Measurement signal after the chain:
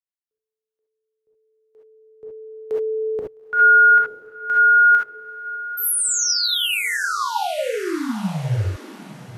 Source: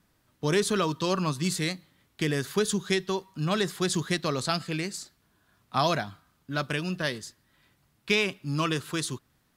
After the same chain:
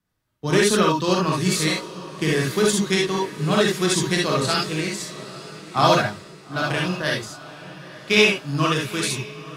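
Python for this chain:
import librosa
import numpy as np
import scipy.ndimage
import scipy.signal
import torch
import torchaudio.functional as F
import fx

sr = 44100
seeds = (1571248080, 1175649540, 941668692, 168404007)

y = fx.echo_diffused(x, sr, ms=894, feedback_pct=49, wet_db=-11.5)
y = fx.rev_gated(y, sr, seeds[0], gate_ms=90, shape='rising', drr_db=-2.0)
y = fx.band_widen(y, sr, depth_pct=40)
y = y * 10.0 ** (3.5 / 20.0)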